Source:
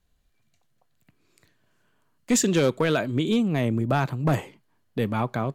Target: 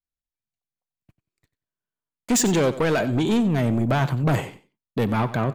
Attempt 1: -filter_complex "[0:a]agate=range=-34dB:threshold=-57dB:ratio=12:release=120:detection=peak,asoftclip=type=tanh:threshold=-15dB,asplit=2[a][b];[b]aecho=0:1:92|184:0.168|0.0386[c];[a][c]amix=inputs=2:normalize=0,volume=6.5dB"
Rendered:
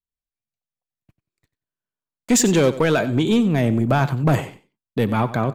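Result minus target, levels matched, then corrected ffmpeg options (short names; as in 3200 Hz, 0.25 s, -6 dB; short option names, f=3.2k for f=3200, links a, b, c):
soft clip: distortion -8 dB
-filter_complex "[0:a]agate=range=-34dB:threshold=-57dB:ratio=12:release=120:detection=peak,asoftclip=type=tanh:threshold=-22.5dB,asplit=2[a][b];[b]aecho=0:1:92|184:0.168|0.0386[c];[a][c]amix=inputs=2:normalize=0,volume=6.5dB"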